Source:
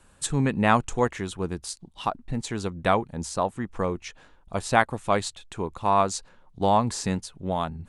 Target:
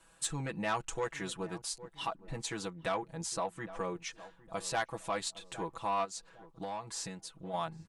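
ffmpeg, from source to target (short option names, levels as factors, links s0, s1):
-filter_complex "[0:a]aecho=1:1:6.1:0.96,asoftclip=type=tanh:threshold=0.266,asplit=2[s0][s1];[s1]adelay=809,lowpass=f=950:p=1,volume=0.112,asplit=2[s2][s3];[s3]adelay=809,lowpass=f=950:p=1,volume=0.41,asplit=2[s4][s5];[s5]adelay=809,lowpass=f=950:p=1,volume=0.41[s6];[s0][s2][s4][s6]amix=inputs=4:normalize=0,asplit=3[s7][s8][s9];[s7]afade=t=out:st=6.04:d=0.02[s10];[s8]acompressor=threshold=0.0355:ratio=16,afade=t=in:st=6.04:d=0.02,afade=t=out:st=7.53:d=0.02[s11];[s9]afade=t=in:st=7.53:d=0.02[s12];[s10][s11][s12]amix=inputs=3:normalize=0,alimiter=limit=0.119:level=0:latency=1:release=200,lowshelf=f=350:g=-10,volume=0.562"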